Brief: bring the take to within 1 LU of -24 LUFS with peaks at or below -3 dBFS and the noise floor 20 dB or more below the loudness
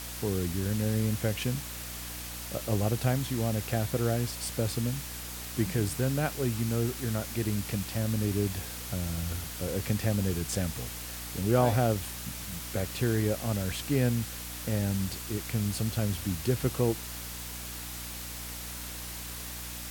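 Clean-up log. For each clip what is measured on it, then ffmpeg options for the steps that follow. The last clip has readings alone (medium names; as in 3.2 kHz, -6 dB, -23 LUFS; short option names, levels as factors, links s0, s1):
hum 60 Hz; highest harmonic 300 Hz; hum level -43 dBFS; noise floor -40 dBFS; noise floor target -51 dBFS; loudness -31.0 LUFS; peak level -11.0 dBFS; loudness target -24.0 LUFS
-> -af "bandreject=f=60:t=h:w=6,bandreject=f=120:t=h:w=6,bandreject=f=180:t=h:w=6,bandreject=f=240:t=h:w=6,bandreject=f=300:t=h:w=6"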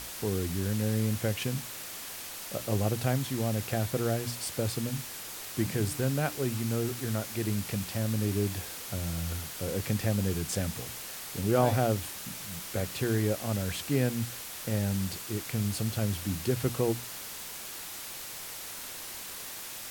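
hum not found; noise floor -41 dBFS; noise floor target -52 dBFS
-> -af "afftdn=nr=11:nf=-41"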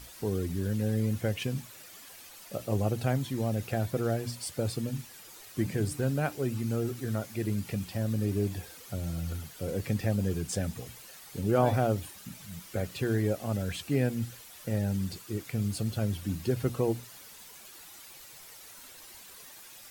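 noise floor -50 dBFS; noise floor target -52 dBFS
-> -af "afftdn=nr=6:nf=-50"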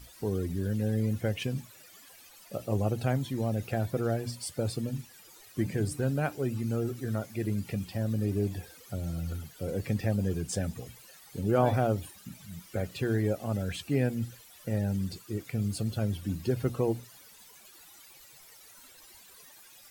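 noise floor -54 dBFS; loudness -32.0 LUFS; peak level -11.5 dBFS; loudness target -24.0 LUFS
-> -af "volume=2.51"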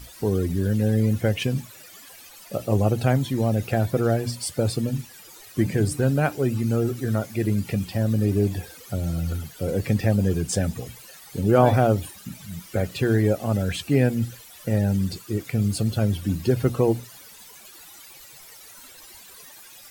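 loudness -24.0 LUFS; peak level -3.5 dBFS; noise floor -46 dBFS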